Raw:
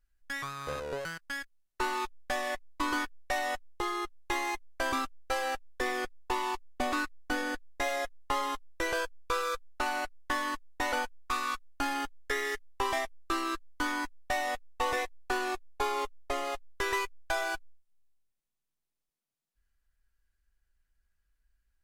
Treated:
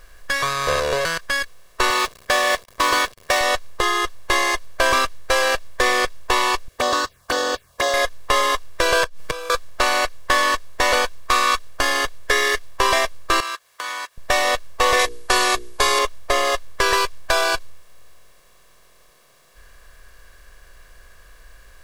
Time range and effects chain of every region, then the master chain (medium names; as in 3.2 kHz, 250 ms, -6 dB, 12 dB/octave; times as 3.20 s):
1.90–3.41 s: block-companded coder 5-bit + high-pass 170 Hz 6 dB/octave
6.68–7.94 s: high-pass 110 Hz + touch-sensitive phaser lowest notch 150 Hz, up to 2.3 kHz, full sweep at -29.5 dBFS
9.03–9.50 s: inverted gate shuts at -26 dBFS, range -24 dB + comb 6.4 ms, depth 98% + three bands compressed up and down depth 70%
13.40–14.18 s: compression 2.5:1, threshold -49 dBFS + high-pass 1 kHz
14.99–15.99 s: steep low-pass 12 kHz 96 dB/octave + treble shelf 4.9 kHz +11.5 dB + hum notches 60/120/180/240/300/360/420/480 Hz
whole clip: spectral levelling over time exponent 0.6; dynamic bell 4.4 kHz, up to +5 dB, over -45 dBFS, Q 0.72; comb 1.8 ms, depth 65%; trim +8 dB